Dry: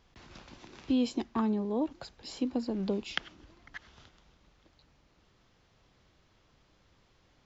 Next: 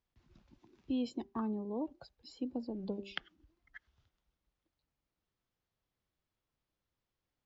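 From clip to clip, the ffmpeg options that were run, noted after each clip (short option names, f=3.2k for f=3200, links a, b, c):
-af "bandreject=f=197.5:t=h:w=4,bandreject=f=395:t=h:w=4,bandreject=f=592.5:t=h:w=4,bandreject=f=790:t=h:w=4,bandreject=f=987.5:t=h:w=4,bandreject=f=1.185k:t=h:w=4,afftdn=nr=16:nf=-43,volume=-7dB"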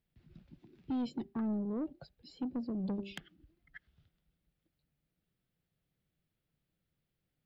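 -af "equalizer=f=160:t=o:w=0.67:g=11,equalizer=f=1k:t=o:w=0.67:g=-10,equalizer=f=6.3k:t=o:w=0.67:g=-11,asoftclip=type=tanh:threshold=-33dB,volume=2.5dB"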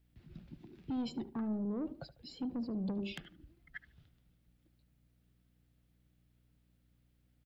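-filter_complex "[0:a]alimiter=level_in=14dB:limit=-24dB:level=0:latency=1:release=16,volume=-14dB,aeval=exprs='val(0)+0.000178*(sin(2*PI*60*n/s)+sin(2*PI*2*60*n/s)/2+sin(2*PI*3*60*n/s)/3+sin(2*PI*4*60*n/s)/4+sin(2*PI*5*60*n/s)/5)':c=same,asplit=2[a][b];[b]adelay=74,lowpass=f=1.4k:p=1,volume=-13dB,asplit=2[c][d];[d]adelay=74,lowpass=f=1.4k:p=1,volume=0.34,asplit=2[e][f];[f]adelay=74,lowpass=f=1.4k:p=1,volume=0.34[g];[a][c][e][g]amix=inputs=4:normalize=0,volume=5dB"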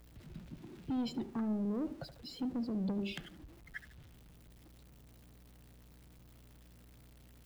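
-af "aeval=exprs='val(0)+0.5*0.00168*sgn(val(0))':c=same,volume=1dB"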